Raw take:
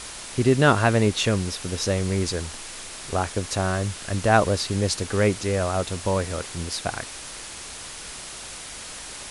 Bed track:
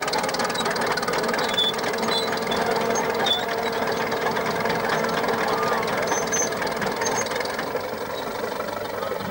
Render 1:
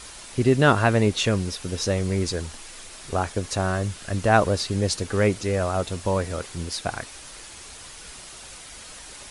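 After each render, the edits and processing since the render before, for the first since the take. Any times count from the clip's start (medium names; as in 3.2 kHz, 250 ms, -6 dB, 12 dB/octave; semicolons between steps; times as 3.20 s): noise reduction 6 dB, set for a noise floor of -38 dBFS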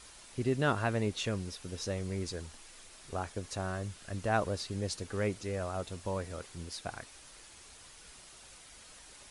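trim -12 dB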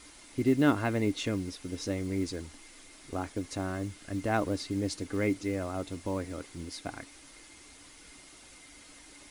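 small resonant body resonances 290/2100 Hz, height 15 dB, ringing for 70 ms; short-mantissa float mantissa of 4-bit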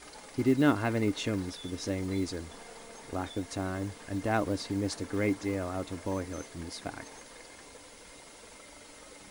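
add bed track -27 dB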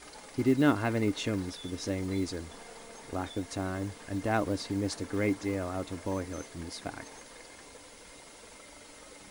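no audible change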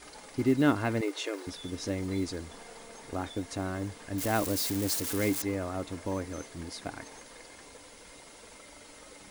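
1.01–1.47 s: brick-wall FIR high-pass 300 Hz; 4.18–5.42 s: zero-crossing glitches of -25 dBFS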